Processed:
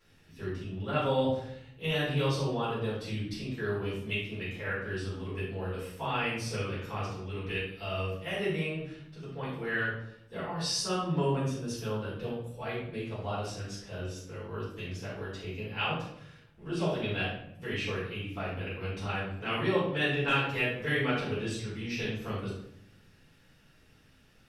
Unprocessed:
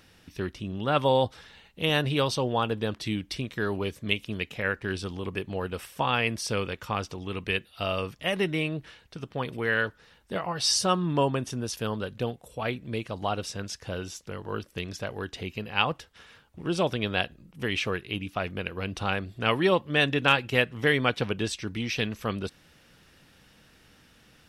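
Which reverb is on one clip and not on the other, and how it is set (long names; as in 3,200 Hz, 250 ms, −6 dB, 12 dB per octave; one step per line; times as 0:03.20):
rectangular room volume 160 cubic metres, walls mixed, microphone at 4.2 metres
level −18.5 dB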